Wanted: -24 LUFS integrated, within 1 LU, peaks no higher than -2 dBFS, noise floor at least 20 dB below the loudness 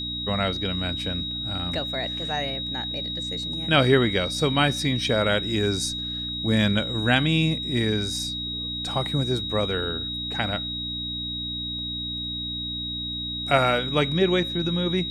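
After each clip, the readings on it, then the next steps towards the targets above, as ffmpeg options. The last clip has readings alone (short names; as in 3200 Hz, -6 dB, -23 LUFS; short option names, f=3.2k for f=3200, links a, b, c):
hum 60 Hz; harmonics up to 300 Hz; hum level -34 dBFS; steady tone 3800 Hz; tone level -29 dBFS; loudness -24.5 LUFS; peak -4.5 dBFS; loudness target -24.0 LUFS
-> -af "bandreject=f=60:t=h:w=4,bandreject=f=120:t=h:w=4,bandreject=f=180:t=h:w=4,bandreject=f=240:t=h:w=4,bandreject=f=300:t=h:w=4"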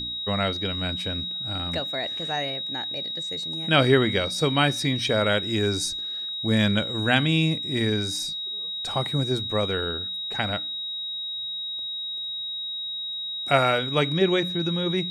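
hum none; steady tone 3800 Hz; tone level -29 dBFS
-> -af "bandreject=f=3.8k:w=30"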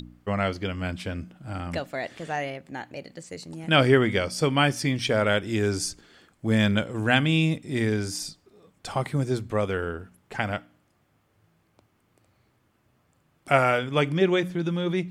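steady tone none; loudness -25.5 LUFS; peak -5.0 dBFS; loudness target -24.0 LUFS
-> -af "volume=1.5dB"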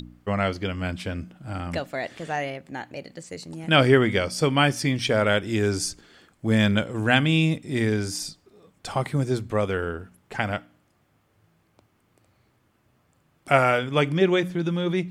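loudness -24.0 LUFS; peak -3.5 dBFS; noise floor -66 dBFS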